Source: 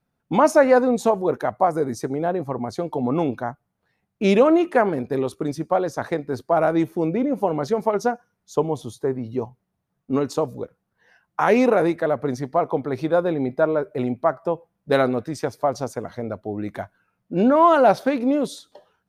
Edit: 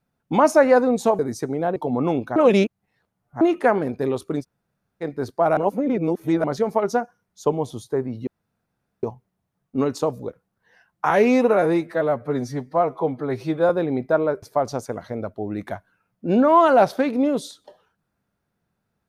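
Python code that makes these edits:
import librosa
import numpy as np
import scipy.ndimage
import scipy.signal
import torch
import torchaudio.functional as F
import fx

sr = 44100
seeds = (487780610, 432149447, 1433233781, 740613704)

y = fx.edit(x, sr, fx.cut(start_s=1.19, length_s=0.61),
    fx.cut(start_s=2.37, length_s=0.5),
    fx.reverse_span(start_s=3.47, length_s=1.05),
    fx.room_tone_fill(start_s=5.53, length_s=0.61, crossfade_s=0.06),
    fx.reverse_span(start_s=6.68, length_s=0.87),
    fx.insert_room_tone(at_s=9.38, length_s=0.76),
    fx.stretch_span(start_s=11.45, length_s=1.73, factor=1.5),
    fx.cut(start_s=13.91, length_s=1.59), tone=tone)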